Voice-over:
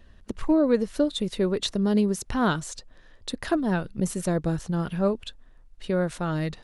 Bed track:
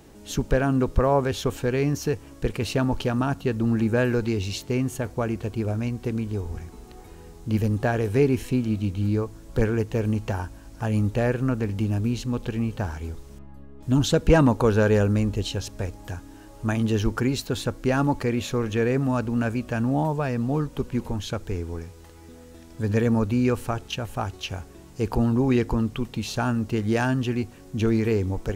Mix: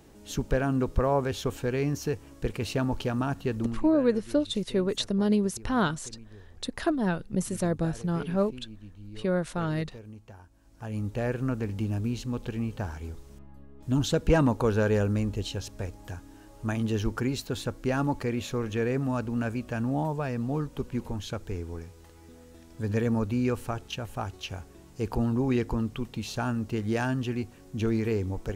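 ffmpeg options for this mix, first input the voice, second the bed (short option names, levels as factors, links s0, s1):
-filter_complex "[0:a]adelay=3350,volume=0.794[s0];[1:a]volume=3.76,afade=t=out:st=3.58:d=0.21:silence=0.149624,afade=t=in:st=10.5:d=0.91:silence=0.158489[s1];[s0][s1]amix=inputs=2:normalize=0"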